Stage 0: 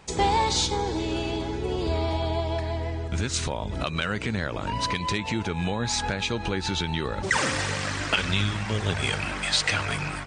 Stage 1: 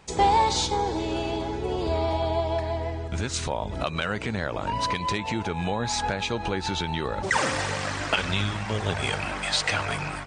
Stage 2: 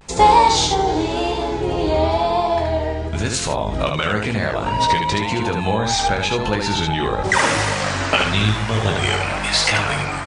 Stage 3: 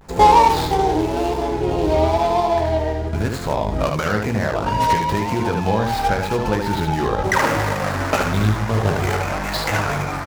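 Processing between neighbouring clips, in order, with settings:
dynamic equaliser 740 Hz, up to +6 dB, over −40 dBFS, Q 1; level −2 dB
pitch vibrato 0.96 Hz 94 cents; on a send: ambience of single reflections 19 ms −6.5 dB, 75 ms −4 dB; on the sum: level +6 dB
running median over 15 samples; level +1 dB

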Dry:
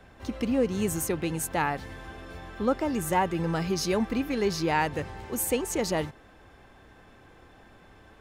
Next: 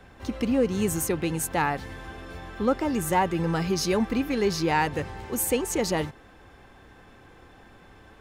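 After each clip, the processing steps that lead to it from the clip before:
notch filter 630 Hz, Q 15
in parallel at −10 dB: hard clipping −20.5 dBFS, distortion −17 dB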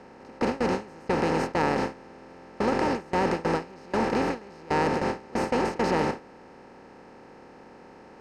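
compressor on every frequency bin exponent 0.2
high-frequency loss of the air 150 metres
noise gate with hold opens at −6 dBFS
level −7.5 dB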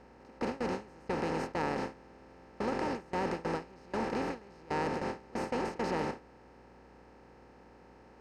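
mains hum 60 Hz, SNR 27 dB
level −8.5 dB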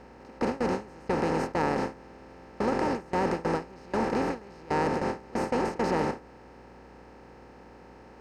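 dynamic equaliser 3,200 Hz, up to −4 dB, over −54 dBFS, Q 0.94
level +6.5 dB

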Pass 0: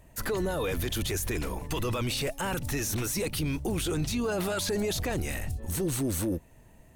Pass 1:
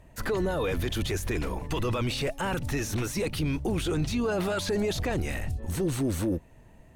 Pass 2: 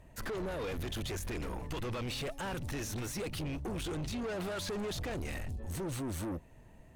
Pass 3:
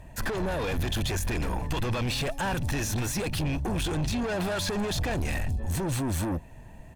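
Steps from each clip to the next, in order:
high-shelf EQ 6,700 Hz −12 dB; level +2 dB
soft clipping −31.5 dBFS, distortion −10 dB; level −3 dB
comb filter 1.2 ms, depth 31%; level +8.5 dB

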